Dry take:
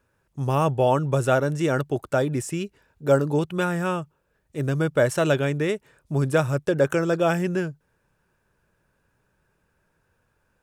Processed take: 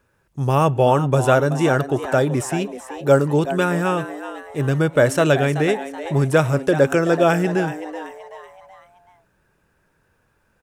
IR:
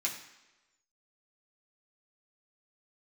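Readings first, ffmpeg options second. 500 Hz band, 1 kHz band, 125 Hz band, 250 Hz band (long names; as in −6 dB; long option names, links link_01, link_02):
+5.0 dB, +6.0 dB, +4.5 dB, +5.0 dB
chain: -filter_complex "[0:a]asplit=5[link_01][link_02][link_03][link_04][link_05];[link_02]adelay=379,afreqshift=130,volume=-12.5dB[link_06];[link_03]adelay=758,afreqshift=260,volume=-19.8dB[link_07];[link_04]adelay=1137,afreqshift=390,volume=-27.2dB[link_08];[link_05]adelay=1516,afreqshift=520,volume=-34.5dB[link_09];[link_01][link_06][link_07][link_08][link_09]amix=inputs=5:normalize=0,asplit=2[link_10][link_11];[1:a]atrim=start_sample=2205,atrim=end_sample=6615,lowpass=3400[link_12];[link_11][link_12]afir=irnorm=-1:irlink=0,volume=-19dB[link_13];[link_10][link_13]amix=inputs=2:normalize=0,volume=4.5dB"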